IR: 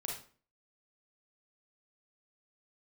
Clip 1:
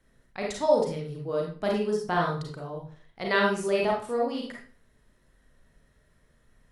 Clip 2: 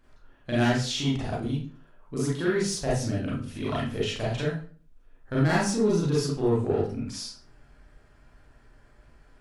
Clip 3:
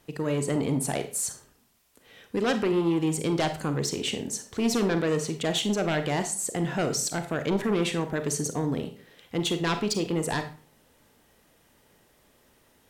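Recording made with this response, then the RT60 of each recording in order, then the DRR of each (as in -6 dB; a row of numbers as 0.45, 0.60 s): 1; 0.45, 0.45, 0.45 s; -1.5, -7.5, 8.0 dB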